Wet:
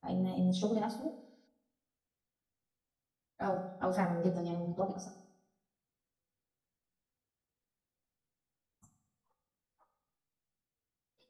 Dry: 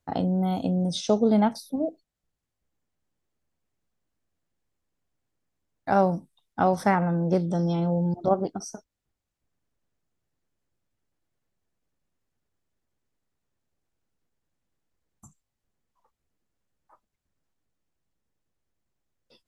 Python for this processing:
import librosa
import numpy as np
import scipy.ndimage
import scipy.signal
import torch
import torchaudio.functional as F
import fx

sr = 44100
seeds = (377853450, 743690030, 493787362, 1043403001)

y = fx.rev_fdn(x, sr, rt60_s=1.4, lf_ratio=1.1, hf_ratio=0.9, size_ms=12.0, drr_db=6.0)
y = fx.stretch_vocoder_free(y, sr, factor=0.58)
y = fx.spec_repair(y, sr, seeds[0], start_s=1.21, length_s=0.23, low_hz=1400.0, high_hz=6600.0, source='before')
y = y * 10.0 ** (-7.5 / 20.0)